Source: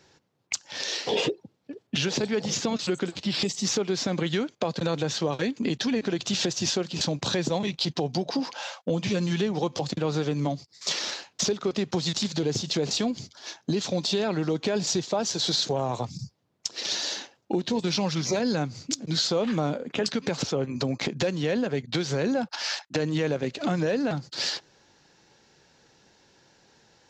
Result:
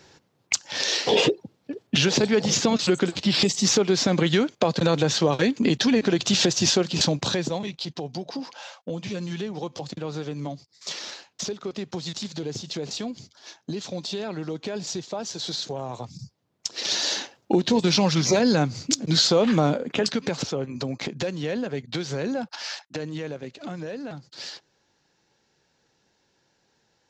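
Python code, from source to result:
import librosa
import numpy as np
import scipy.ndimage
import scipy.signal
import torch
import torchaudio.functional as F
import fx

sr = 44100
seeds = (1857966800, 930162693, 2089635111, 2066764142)

y = fx.gain(x, sr, db=fx.line((7.01, 6.0), (7.8, -5.0), (16.01, -5.0), (17.17, 6.0), (19.66, 6.0), (20.7, -2.0), (22.44, -2.0), (23.56, -8.5)))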